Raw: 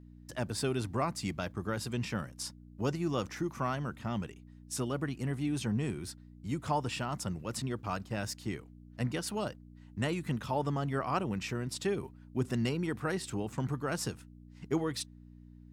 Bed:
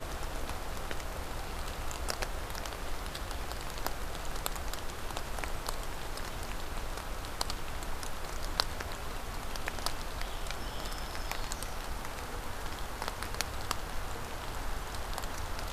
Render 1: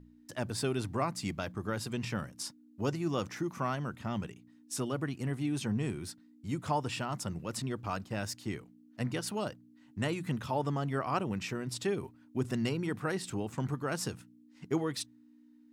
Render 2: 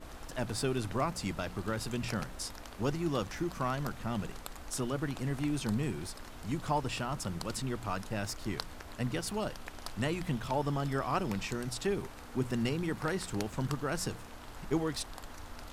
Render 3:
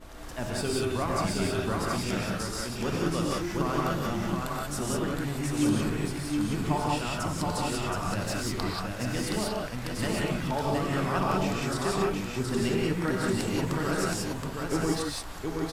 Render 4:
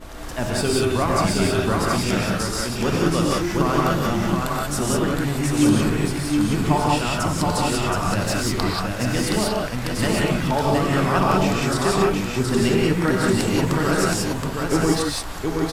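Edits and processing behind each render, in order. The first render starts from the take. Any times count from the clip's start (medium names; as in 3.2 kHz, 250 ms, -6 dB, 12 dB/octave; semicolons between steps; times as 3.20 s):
de-hum 60 Hz, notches 3
add bed -9 dB
delay 722 ms -3.5 dB; gated-style reverb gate 210 ms rising, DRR -3 dB
trim +8.5 dB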